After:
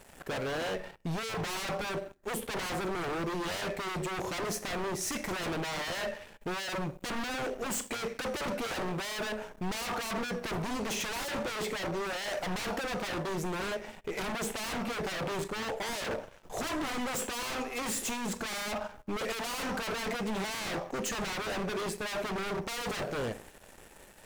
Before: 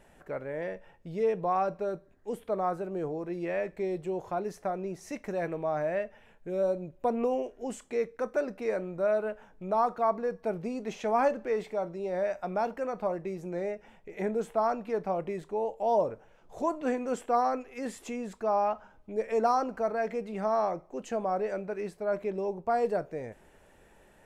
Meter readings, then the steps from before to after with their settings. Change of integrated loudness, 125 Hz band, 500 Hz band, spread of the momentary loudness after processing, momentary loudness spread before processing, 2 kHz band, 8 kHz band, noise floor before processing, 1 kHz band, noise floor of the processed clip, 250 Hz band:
−3.0 dB, +3.5 dB, −7.0 dB, 4 LU, 11 LU, +7.0 dB, can't be measured, −59 dBFS, −5.5 dB, −54 dBFS, −1.0 dB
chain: high-shelf EQ 4,000 Hz +9.5 dB
four-comb reverb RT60 0.54 s, combs from 29 ms, DRR 13 dB
in parallel at −4 dB: soft clipping −31 dBFS, distortion −8 dB
on the sum: leveller curve on the samples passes 3
wave folding −22.5 dBFS
level −6 dB

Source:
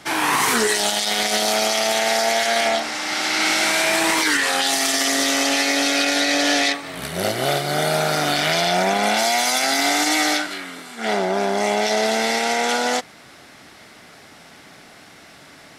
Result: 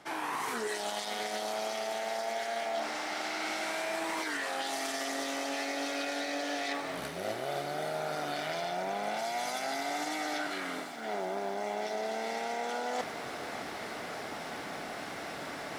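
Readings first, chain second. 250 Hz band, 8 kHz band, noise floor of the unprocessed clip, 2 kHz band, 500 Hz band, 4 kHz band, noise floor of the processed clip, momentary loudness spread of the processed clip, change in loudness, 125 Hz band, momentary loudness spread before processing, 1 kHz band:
−15.0 dB, −20.0 dB, −46 dBFS, −16.0 dB, −12.5 dB, −18.5 dB, −41 dBFS, 6 LU, −16.5 dB, −17.5 dB, 5 LU, −12.5 dB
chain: parametric band 660 Hz +9 dB 3 octaves
reversed playback
downward compressor 5 to 1, threshold −36 dBFS, peak gain reduction 24 dB
reversed playback
feedback echo at a low word length 583 ms, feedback 80%, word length 9 bits, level −13.5 dB

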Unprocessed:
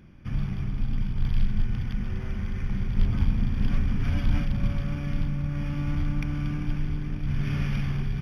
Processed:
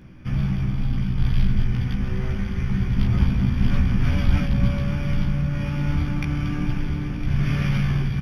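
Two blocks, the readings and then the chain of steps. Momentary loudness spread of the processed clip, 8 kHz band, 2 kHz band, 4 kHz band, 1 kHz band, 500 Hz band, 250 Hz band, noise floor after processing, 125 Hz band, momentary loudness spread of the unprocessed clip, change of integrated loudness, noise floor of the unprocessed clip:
5 LU, can't be measured, +6.5 dB, +7.0 dB, +6.5 dB, +7.5 dB, +6.5 dB, −27 dBFS, +6.0 dB, 5 LU, +5.5 dB, −32 dBFS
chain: double-tracking delay 16 ms −2 dB
on a send: single-tap delay 1,008 ms −13.5 dB
on the sum: level +4.5 dB

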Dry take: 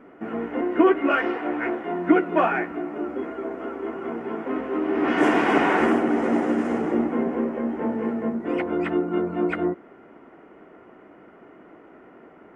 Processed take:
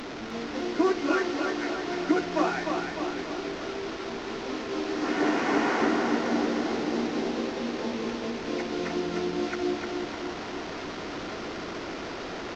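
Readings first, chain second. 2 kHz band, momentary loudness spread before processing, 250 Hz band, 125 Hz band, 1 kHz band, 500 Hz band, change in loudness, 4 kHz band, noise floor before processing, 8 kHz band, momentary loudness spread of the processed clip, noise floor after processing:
−4.0 dB, 12 LU, −5.5 dB, −4.0 dB, −4.5 dB, −5.0 dB, −5.5 dB, +5.5 dB, −50 dBFS, can't be measured, 10 LU, −37 dBFS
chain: linear delta modulator 32 kbit/s, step −24.5 dBFS
on a send: repeating echo 303 ms, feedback 56%, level −4.5 dB
on the sum: level −7 dB

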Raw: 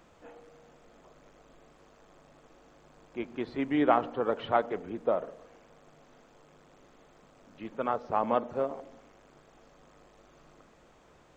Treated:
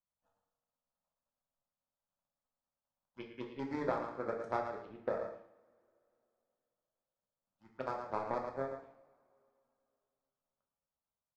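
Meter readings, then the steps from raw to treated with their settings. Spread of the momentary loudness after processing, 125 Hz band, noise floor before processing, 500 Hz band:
14 LU, −5.5 dB, −60 dBFS, −8.5 dB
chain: power curve on the samples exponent 2
on a send: repeating echo 110 ms, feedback 15%, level −10 dB
on the sum: downward compressor 5 to 1, threshold −38 dBFS, peak gain reduction 15.5 dB
phaser swept by the level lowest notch 370 Hz, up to 2,900 Hz, full sweep at −45.5 dBFS
coupled-rooms reverb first 0.57 s, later 3 s, from −27 dB, DRR 1 dB
level +6 dB

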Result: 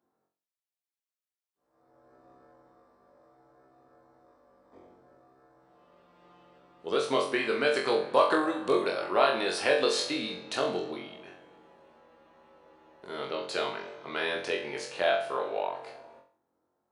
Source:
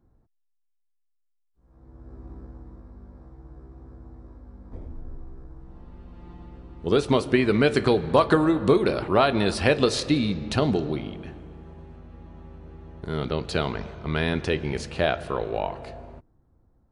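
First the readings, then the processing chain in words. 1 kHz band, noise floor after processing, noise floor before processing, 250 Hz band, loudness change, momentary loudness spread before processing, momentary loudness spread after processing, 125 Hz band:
−2.5 dB, below −85 dBFS, −71 dBFS, −11.5 dB, −5.0 dB, 20 LU, 14 LU, −23.0 dB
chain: high-pass filter 450 Hz 12 dB per octave
flutter between parallel walls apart 3.8 metres, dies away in 0.43 s
level −5 dB

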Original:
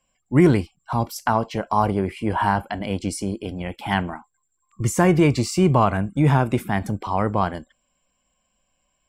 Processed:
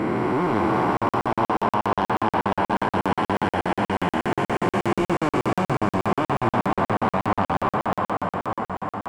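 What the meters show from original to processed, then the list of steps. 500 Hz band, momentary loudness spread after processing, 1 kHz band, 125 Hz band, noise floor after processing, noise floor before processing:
−0.5 dB, 3 LU, +2.5 dB, −7.0 dB, below −85 dBFS, −72 dBFS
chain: spectrum smeared in time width 1,470 ms
bass and treble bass −8 dB, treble −11 dB
in parallel at +2 dB: brickwall limiter −22 dBFS, peak gain reduction 7.5 dB
on the sum: high-pass filter 85 Hz 12 dB per octave
parametric band 1,200 Hz +5.5 dB 1.1 octaves
on a send: feedback echo with a long and a short gap by turns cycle 787 ms, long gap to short 1.5 to 1, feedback 49%, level −8.5 dB
on the sum: speech leveller within 4 dB 2 s
soft clipping −17 dBFS, distortion −15 dB
flanger 1.4 Hz, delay 8.9 ms, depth 1.7 ms, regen −41%
regular buffer underruns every 0.12 s, samples 2,048, zero, from 0:00.97
level +7 dB

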